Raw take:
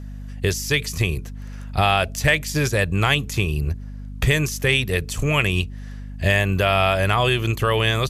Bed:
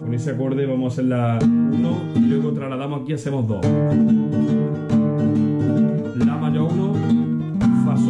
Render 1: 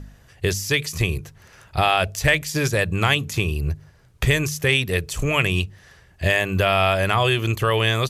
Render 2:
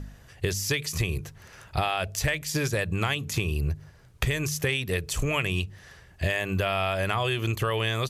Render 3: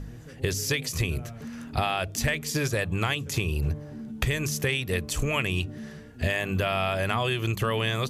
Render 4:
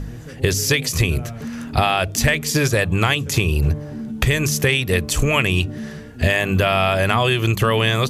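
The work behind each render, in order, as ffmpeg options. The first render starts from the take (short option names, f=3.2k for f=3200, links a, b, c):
-af "bandreject=f=50:t=h:w=4,bandreject=f=100:t=h:w=4,bandreject=f=150:t=h:w=4,bandreject=f=200:t=h:w=4,bandreject=f=250:t=h:w=4"
-af "acompressor=threshold=-23dB:ratio=6"
-filter_complex "[1:a]volume=-23dB[a];[0:a][a]amix=inputs=2:normalize=0"
-af "volume=9dB,alimiter=limit=-2dB:level=0:latency=1"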